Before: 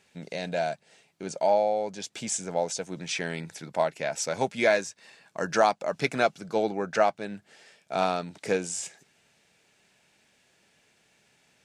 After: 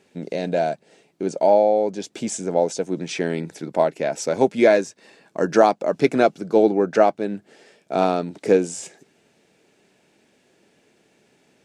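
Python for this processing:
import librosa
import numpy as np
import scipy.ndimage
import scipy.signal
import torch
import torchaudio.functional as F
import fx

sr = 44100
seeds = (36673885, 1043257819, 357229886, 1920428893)

y = fx.peak_eq(x, sr, hz=330.0, db=14.0, octaves=1.9)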